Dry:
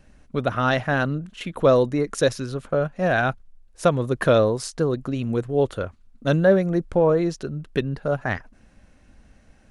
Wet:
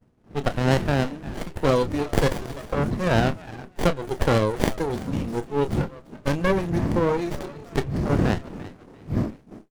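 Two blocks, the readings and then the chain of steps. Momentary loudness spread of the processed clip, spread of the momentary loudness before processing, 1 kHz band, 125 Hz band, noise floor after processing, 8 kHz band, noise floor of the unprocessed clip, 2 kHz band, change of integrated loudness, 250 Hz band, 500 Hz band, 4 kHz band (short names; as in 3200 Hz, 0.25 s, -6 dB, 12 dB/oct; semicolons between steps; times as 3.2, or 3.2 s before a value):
12 LU, 12 LU, -1.0 dB, +1.0 dB, -52 dBFS, -2.0 dB, -55 dBFS, -3.5 dB, -2.5 dB, 0.0 dB, -4.0 dB, +0.5 dB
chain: wind noise 160 Hz -21 dBFS; RIAA curve recording; spectral noise reduction 11 dB; on a send: frequency-shifting echo 0.342 s, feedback 44%, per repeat +92 Hz, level -20 dB; on the sum: dynamic EQ 600 Hz, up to -3 dB, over -30 dBFS, Q 2.4; expander -40 dBFS; doubler 28 ms -11 dB; in parallel at +1 dB: compressor, threshold -35 dBFS, peak gain reduction 18.5 dB; on the sum: running maximum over 33 samples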